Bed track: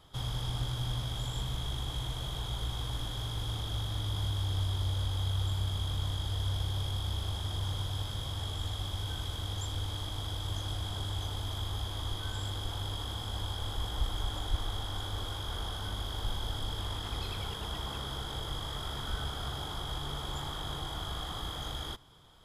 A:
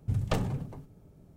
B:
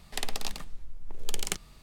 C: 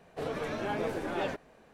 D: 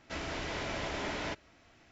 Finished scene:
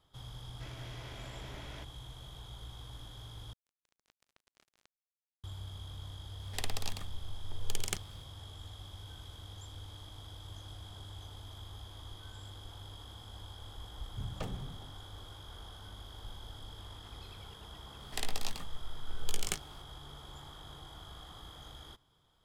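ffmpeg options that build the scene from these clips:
-filter_complex "[4:a]asplit=2[a][b];[2:a]asplit=2[c][d];[0:a]volume=-12dB[e];[b]acrusher=bits=3:mix=0:aa=0.5[f];[d]asplit=2[g][h];[h]adelay=19,volume=-7dB[i];[g][i]amix=inputs=2:normalize=0[j];[e]asplit=2[k][l];[k]atrim=end=3.534[m];[f]atrim=end=1.91,asetpts=PTS-STARTPTS,volume=-9dB[n];[l]atrim=start=5.436[o];[a]atrim=end=1.91,asetpts=PTS-STARTPTS,volume=-13.5dB,afade=t=in:d=0.004:c=hsin,afade=t=out:st=1.906:d=0.004:c=hsin,adelay=500[p];[c]atrim=end=1.82,asetpts=PTS-STARTPTS,volume=-4.5dB,afade=t=in:d=0.004:c=hsin,afade=t=out:st=1.816:d=0.004:c=hsin,adelay=6410[q];[1:a]atrim=end=1.36,asetpts=PTS-STARTPTS,volume=-11.5dB,afade=t=in:d=0.004:c=hsin,afade=t=out:st=1.356:d=0.004:c=hsin,adelay=14090[r];[j]atrim=end=1.82,asetpts=PTS-STARTPTS,volume=-4.5dB,afade=t=in:d=0.004:c=hsin,afade=t=out:st=1.816:d=0.004:c=hsin,adelay=18000[s];[m][n]acrossfade=d=0.004:c1=hsin:c2=hsin[t];[t][o]acrossfade=d=0.004:c1=hsin:c2=hsin[u];[u][p][q][r][s]amix=inputs=5:normalize=0"

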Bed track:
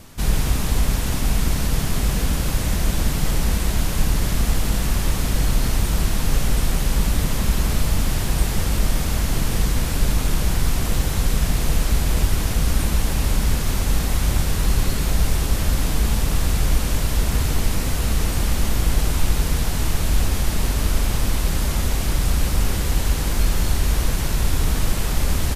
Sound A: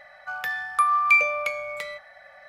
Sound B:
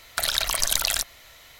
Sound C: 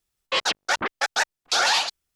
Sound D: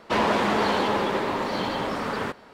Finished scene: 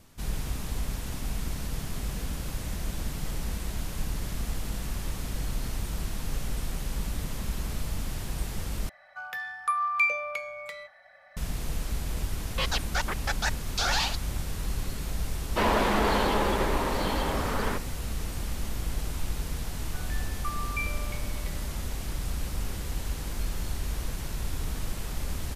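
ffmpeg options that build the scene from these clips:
-filter_complex "[1:a]asplit=2[a][b];[0:a]volume=-12.5dB,asplit=2[c][d];[c]atrim=end=8.894[e];[a]atrim=end=2.48,asetpts=PTS-STARTPTS,volume=-6.5dB[f];[d]atrim=start=11.366[g];[3:a]atrim=end=2.15,asetpts=PTS-STARTPTS,volume=-7dB,afade=t=in:d=0.004:c=hsin,afade=t=out:st=2.146:d=0.004:c=hsin,adelay=12260[h];[4:a]atrim=end=2.53,asetpts=PTS-STARTPTS,volume=-2.5dB,afade=t=in:d=0.004:c=hsin,afade=t=out:st=2.526:d=0.004:c=hsin,adelay=15460[i];[b]atrim=end=2.48,asetpts=PTS-STARTPTS,volume=-16dB,afade=t=in:d=0.004:c=hsin,afade=t=out:st=2.476:d=0.004:c=hsin,adelay=19660[j];[e][f]acrossfade=d=0.004:c1=hsin:c2=hsin[k];[k][g]acrossfade=d=0.004:c1=hsin:c2=hsin[l];[l][h][i][j]amix=inputs=4:normalize=0"

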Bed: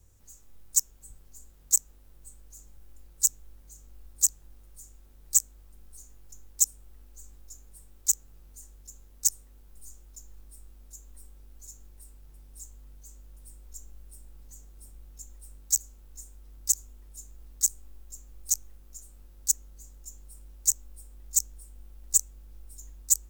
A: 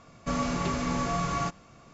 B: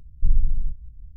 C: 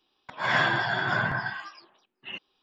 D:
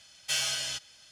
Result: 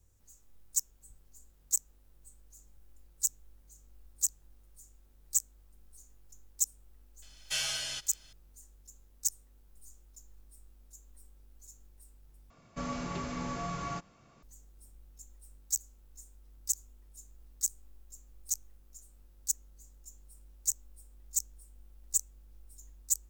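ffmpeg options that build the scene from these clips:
-filter_complex "[0:a]volume=-7dB,asplit=2[a][b];[a]atrim=end=12.504[c];[1:a]atrim=end=1.93,asetpts=PTS-STARTPTS,volume=-8dB[d];[b]atrim=start=14.426[e];[4:a]atrim=end=1.11,asetpts=PTS-STARTPTS,volume=-3.5dB,afade=t=in:d=0.004:c=hsin,afade=t=out:st=1.106:d=0.004:c=hsin,adelay=318402S[f];[c][d]acrossfade=d=0.004:c1=hsin:c2=hsin[g];[g][e]acrossfade=d=0.004:c1=hsin:c2=hsin[h];[h][f]amix=inputs=2:normalize=0"

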